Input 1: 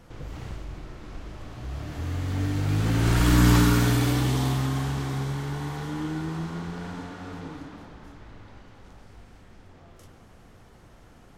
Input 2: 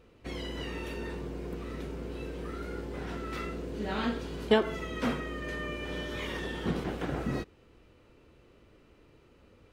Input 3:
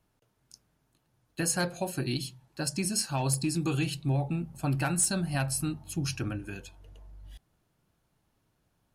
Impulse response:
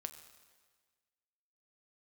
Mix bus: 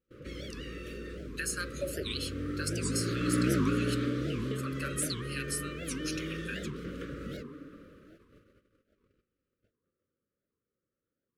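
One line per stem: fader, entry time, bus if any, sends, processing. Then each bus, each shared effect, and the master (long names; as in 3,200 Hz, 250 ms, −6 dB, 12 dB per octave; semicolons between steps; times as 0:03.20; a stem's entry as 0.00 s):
−3.0 dB, 0.00 s, send −21 dB, resonant band-pass 530 Hz, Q 0.7
−2.5 dB, 0.00 s, no send, downward compressor, threshold −34 dBFS, peak gain reduction 15.5 dB
+1.0 dB, 0.00 s, no send, downward compressor, threshold −32 dBFS, peak gain reduction 10 dB; auto-filter high-pass saw down 0.98 Hz 380–4,100 Hz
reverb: on, RT60 1.5 s, pre-delay 6 ms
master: noise gate −53 dBFS, range −27 dB; elliptic band-stop filter 560–1,200 Hz, stop band 40 dB; wow of a warped record 78 rpm, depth 250 cents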